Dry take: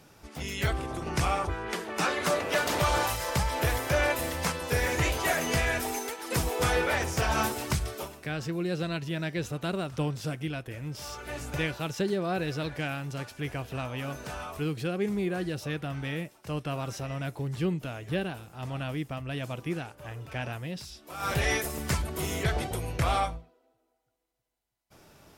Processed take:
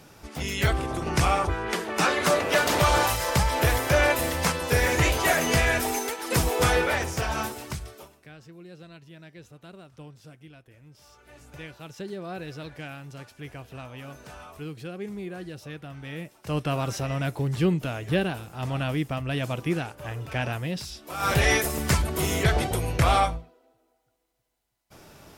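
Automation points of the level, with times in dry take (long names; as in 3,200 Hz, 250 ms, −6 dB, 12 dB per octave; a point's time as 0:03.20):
0:06.63 +5 dB
0:07.90 −7 dB
0:08.41 −15 dB
0:11.14 −15 dB
0:12.25 −6 dB
0:16.00 −6 dB
0:16.58 +6 dB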